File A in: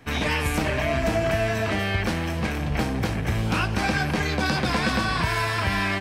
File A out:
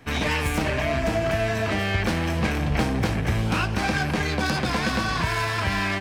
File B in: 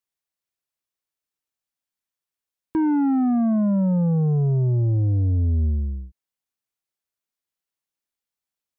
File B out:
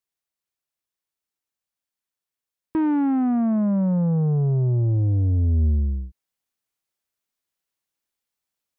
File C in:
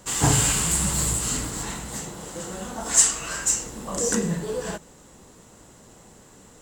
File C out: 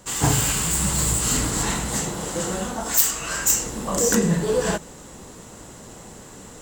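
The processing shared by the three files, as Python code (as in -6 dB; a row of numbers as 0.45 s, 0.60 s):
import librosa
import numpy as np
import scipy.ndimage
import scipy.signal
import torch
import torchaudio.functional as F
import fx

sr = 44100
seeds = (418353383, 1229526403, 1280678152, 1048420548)

y = fx.self_delay(x, sr, depth_ms=0.068)
y = fx.rider(y, sr, range_db=4, speed_s=0.5)
y = y * 10.0 ** (-24 / 20.0) / np.sqrt(np.mean(np.square(y)))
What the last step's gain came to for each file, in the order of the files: +0.5 dB, 0.0 dB, +4.5 dB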